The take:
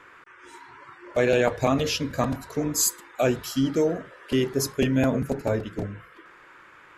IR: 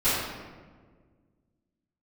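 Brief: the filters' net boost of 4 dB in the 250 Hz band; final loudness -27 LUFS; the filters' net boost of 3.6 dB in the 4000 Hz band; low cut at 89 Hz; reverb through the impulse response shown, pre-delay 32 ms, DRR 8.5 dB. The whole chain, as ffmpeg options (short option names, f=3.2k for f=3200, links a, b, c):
-filter_complex "[0:a]highpass=89,equalizer=f=250:t=o:g=4.5,equalizer=f=4k:t=o:g=5,asplit=2[a][b];[1:a]atrim=start_sample=2205,adelay=32[c];[b][c]afir=irnorm=-1:irlink=0,volume=-23.5dB[d];[a][d]amix=inputs=2:normalize=0,volume=-5dB"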